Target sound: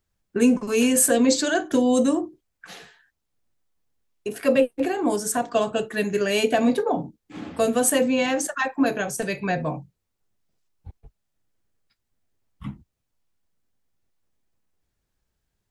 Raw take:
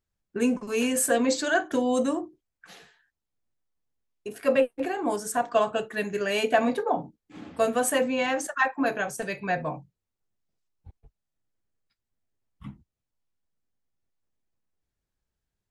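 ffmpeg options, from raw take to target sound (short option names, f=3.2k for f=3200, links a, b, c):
-filter_complex "[0:a]acrossover=split=490|3000[a][b][c];[b]acompressor=threshold=-41dB:ratio=2[d];[a][d][c]amix=inputs=3:normalize=0,volume=7dB"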